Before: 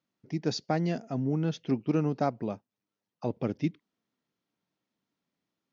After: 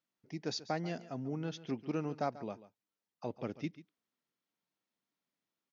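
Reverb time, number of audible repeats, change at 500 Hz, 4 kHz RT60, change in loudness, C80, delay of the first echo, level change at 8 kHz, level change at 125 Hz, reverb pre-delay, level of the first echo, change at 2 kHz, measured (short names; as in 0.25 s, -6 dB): none, 1, -7.5 dB, none, -8.5 dB, none, 0.14 s, n/a, -11.0 dB, none, -16.5 dB, -4.5 dB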